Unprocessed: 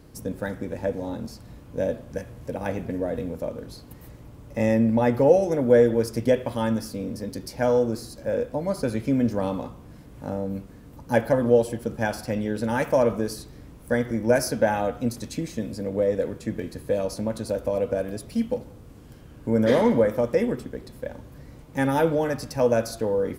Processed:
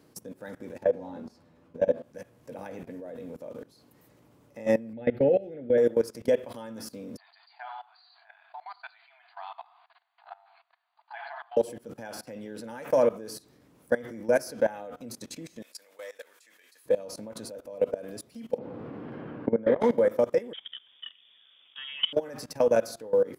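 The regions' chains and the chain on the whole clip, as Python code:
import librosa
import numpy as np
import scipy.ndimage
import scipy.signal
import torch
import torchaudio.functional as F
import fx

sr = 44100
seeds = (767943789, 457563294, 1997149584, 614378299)

y = fx.chain(x, sr, fx.lowpass(hz=2300.0, slope=6),
    fx.doubler(ms=12.0, db=-2.5), at=(0.83, 2.03))
y = fx.chain(y, sr, fx.savgol(points=15),
    fx.low_shelf(hz=100.0, db=8.5),
    fx.fixed_phaser(hz=2500.0, stages=4), at=(4.93, 5.78))
y = fx.chain(y, sr, fx.brickwall_bandpass(low_hz=650.0, high_hz=4800.0),
    fx.echo_single(ms=91, db=-16.5), at=(7.17, 11.57))
y = fx.chain(y, sr, fx.highpass(hz=1300.0, slope=12),
    fx.tilt_eq(slope=1.5), at=(15.62, 16.86))
y = fx.chain(y, sr, fx.air_absorb(metres=400.0),
    fx.band_squash(depth_pct=100), at=(18.58, 19.81))
y = fx.chain(y, sr, fx.low_shelf(hz=300.0, db=-8.0),
    fx.freq_invert(carrier_hz=3500), at=(20.53, 22.13))
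y = scipy.signal.sosfilt(scipy.signal.bessel(2, 220.0, 'highpass', norm='mag', fs=sr, output='sos'), y)
y = fx.dynamic_eq(y, sr, hz=500.0, q=2.8, threshold_db=-31.0, ratio=4.0, max_db=4)
y = fx.level_steps(y, sr, step_db=20)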